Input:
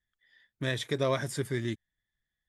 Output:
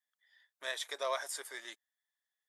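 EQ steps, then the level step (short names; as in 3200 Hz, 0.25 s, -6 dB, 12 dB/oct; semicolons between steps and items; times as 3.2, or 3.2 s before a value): HPF 690 Hz 24 dB/oct; bell 2300 Hz -6.5 dB 1.7 oct; +1.0 dB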